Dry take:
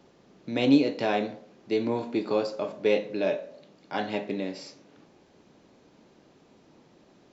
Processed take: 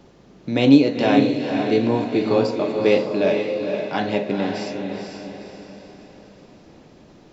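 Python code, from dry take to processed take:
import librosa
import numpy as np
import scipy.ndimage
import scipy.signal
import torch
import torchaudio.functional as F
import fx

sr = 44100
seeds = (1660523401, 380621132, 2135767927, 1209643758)

p1 = fx.low_shelf(x, sr, hz=110.0, db=12.0)
p2 = p1 + fx.echo_diffused(p1, sr, ms=487, feedback_pct=45, wet_db=-5, dry=0)
y = p2 * librosa.db_to_amplitude(6.0)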